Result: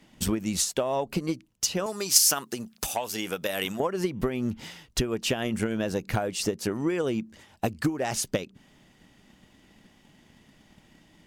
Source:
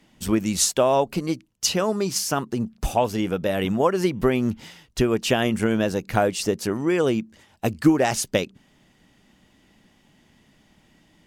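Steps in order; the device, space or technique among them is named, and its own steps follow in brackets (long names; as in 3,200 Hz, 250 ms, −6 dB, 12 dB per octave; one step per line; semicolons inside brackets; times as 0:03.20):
drum-bus smash (transient designer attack +6 dB, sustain +1 dB; downward compressor 6 to 1, threshold −23 dBFS, peak gain reduction 16 dB; soft clipping −13 dBFS, distortion −23 dB)
0:01.86–0:03.80: spectral tilt +3.5 dB per octave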